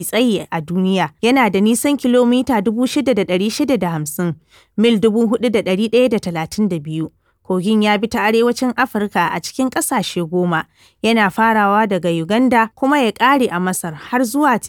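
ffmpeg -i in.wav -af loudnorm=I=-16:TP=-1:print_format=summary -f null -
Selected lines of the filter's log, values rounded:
Input Integrated:    -16.1 LUFS
Input True Peak:      -1.3 dBTP
Input LRA:             1.9 LU
Input Threshold:     -26.2 LUFS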